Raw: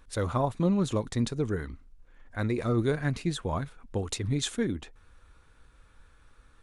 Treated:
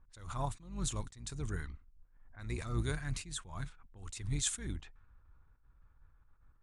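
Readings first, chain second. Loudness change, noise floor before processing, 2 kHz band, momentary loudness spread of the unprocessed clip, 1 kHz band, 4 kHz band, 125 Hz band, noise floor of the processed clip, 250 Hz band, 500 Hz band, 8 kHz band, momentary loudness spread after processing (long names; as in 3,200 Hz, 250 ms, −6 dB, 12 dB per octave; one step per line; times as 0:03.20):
−9.5 dB, −60 dBFS, −8.0 dB, 9 LU, −10.0 dB, −6.5 dB, −9.0 dB, −66 dBFS, −15.5 dB, −17.0 dB, +0.5 dB, 15 LU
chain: sub-octave generator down 2 octaves, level −4 dB
graphic EQ with 10 bands 250 Hz −7 dB, 500 Hz −11 dB, 8,000 Hz +11 dB
low-pass that shuts in the quiet parts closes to 780 Hz, open at −27 dBFS
level that may rise only so fast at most 100 dB per second
level −4 dB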